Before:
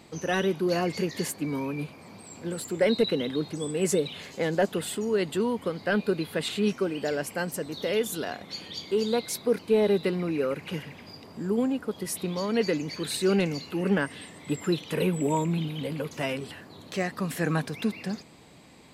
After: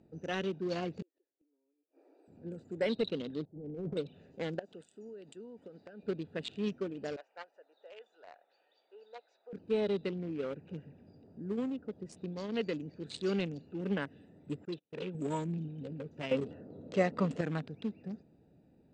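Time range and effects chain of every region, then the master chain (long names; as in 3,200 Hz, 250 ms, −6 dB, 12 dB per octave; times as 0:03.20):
0:01.02–0:02.28: linear-phase brick-wall high-pass 270 Hz + gate with flip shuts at −29 dBFS, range −36 dB
0:03.45–0:03.97: downward expander −39 dBFS + low-pass filter 1,000 Hz 24 dB per octave + transient designer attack −10 dB, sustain +8 dB
0:04.59–0:06.03: RIAA equalisation recording + downward compressor 8 to 1, threshold −32 dBFS
0:07.16–0:09.53: high-pass filter 700 Hz 24 dB per octave + high-frequency loss of the air 160 metres
0:14.65–0:15.15: low-pass filter 7,300 Hz 24 dB per octave + noise gate −33 dBFS, range −28 dB + low-shelf EQ 250 Hz −11.5 dB
0:16.31–0:17.41: comb filter 1.5 ms, depth 49% + hollow resonant body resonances 300/440/970 Hz, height 14 dB, ringing for 20 ms
whole clip: adaptive Wiener filter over 41 samples; Butterworth low-pass 8,100 Hz 48 dB per octave; dynamic equaliser 3,200 Hz, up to +5 dB, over −51 dBFS, Q 1.9; level −8.5 dB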